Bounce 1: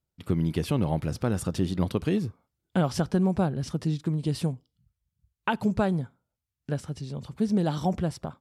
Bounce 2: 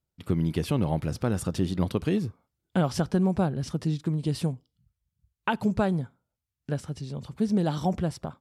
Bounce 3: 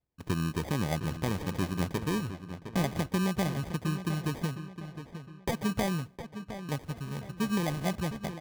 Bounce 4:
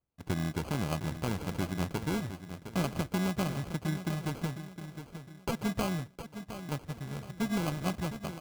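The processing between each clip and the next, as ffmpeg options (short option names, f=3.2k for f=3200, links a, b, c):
-af anull
-filter_complex "[0:a]asplit=2[a][b];[b]acompressor=threshold=-31dB:ratio=6,volume=0dB[c];[a][c]amix=inputs=2:normalize=0,acrusher=samples=32:mix=1:aa=0.000001,asplit=2[d][e];[e]adelay=711,lowpass=f=4.3k:p=1,volume=-10.5dB,asplit=2[f][g];[g]adelay=711,lowpass=f=4.3k:p=1,volume=0.41,asplit=2[h][i];[i]adelay=711,lowpass=f=4.3k:p=1,volume=0.41,asplit=2[j][k];[k]adelay=711,lowpass=f=4.3k:p=1,volume=0.41[l];[d][f][h][j][l]amix=inputs=5:normalize=0,volume=-7.5dB"
-af "acrusher=samples=24:mix=1:aa=0.000001,volume=-2dB"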